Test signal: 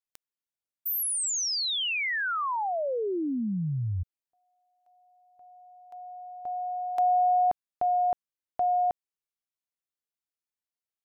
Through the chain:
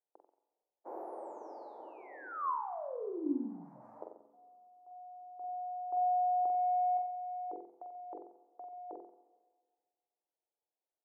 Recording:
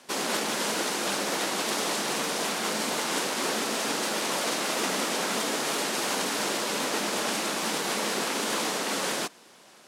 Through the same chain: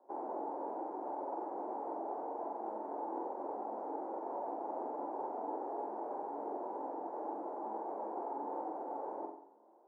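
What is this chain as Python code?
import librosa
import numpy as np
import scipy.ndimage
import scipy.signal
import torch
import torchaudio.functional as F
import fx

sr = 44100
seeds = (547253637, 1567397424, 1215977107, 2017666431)

p1 = fx.envelope_flatten(x, sr, power=0.3)
p2 = fx.dereverb_blind(p1, sr, rt60_s=0.66)
p3 = scipy.signal.sosfilt(scipy.signal.ellip(3, 1.0, 60, [330.0, 880.0], 'bandpass', fs=sr, output='sos'), p2)
p4 = fx.hum_notches(p3, sr, base_hz=50, count=10)
p5 = fx.over_compress(p4, sr, threshold_db=-41.0, ratio=-1.0)
p6 = p5 + fx.room_flutter(p5, sr, wall_m=7.8, rt60_s=0.58, dry=0)
y = fx.rev_schroeder(p6, sr, rt60_s=1.7, comb_ms=28, drr_db=14.5)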